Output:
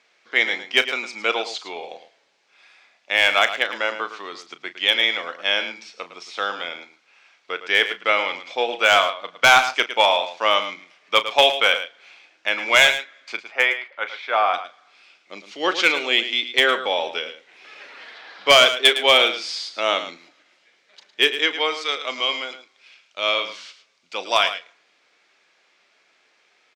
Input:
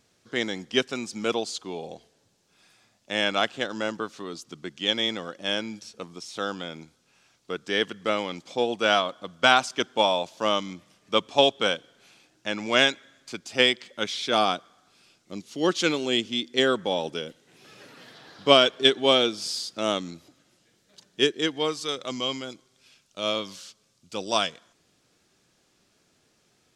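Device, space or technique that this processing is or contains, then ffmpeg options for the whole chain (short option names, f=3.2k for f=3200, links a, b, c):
megaphone: -filter_complex "[0:a]asettb=1/sr,asplit=3[a][b][c];[a]atrim=end=13.414[d];[b]atrim=start=13.41:end=14.54,asetpts=PTS-STARTPTS,afade=t=in:d=0.004:c=qsin,afade=t=out:st=1.126:d=0.004:c=qsin,acrossover=split=490 2000:gain=0.224 1 0.112[e][f][g];[e][f][g]amix=inputs=3:normalize=0[h];[c]atrim=start=14.536[i];[d][h]acrossfade=d=0.004:c1=hsin:c2=qsin[j];[j][i]acrossfade=d=0.004:c1=qsin:c2=hsin,highpass=650,lowpass=3.9k,equalizer=f=2.2k:t=o:w=0.42:g=8,asoftclip=type=hard:threshold=-12.5dB,asplit=2[k][l];[l]adelay=35,volume=-13dB[m];[k][m]amix=inputs=2:normalize=0,aecho=1:1:109:0.266,volume=7dB"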